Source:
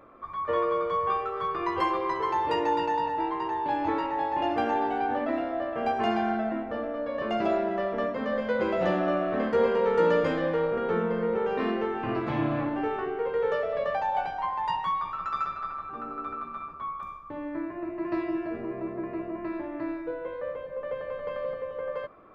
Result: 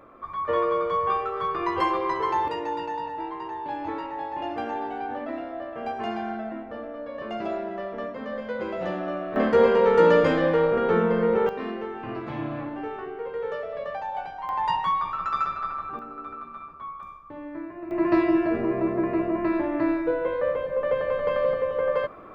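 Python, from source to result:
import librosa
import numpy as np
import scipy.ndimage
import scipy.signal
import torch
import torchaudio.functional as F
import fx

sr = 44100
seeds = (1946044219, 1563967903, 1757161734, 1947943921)

y = fx.gain(x, sr, db=fx.steps((0.0, 2.5), (2.48, -4.0), (9.36, 5.5), (11.49, -4.0), (14.49, 4.0), (15.99, -2.5), (17.91, 9.0)))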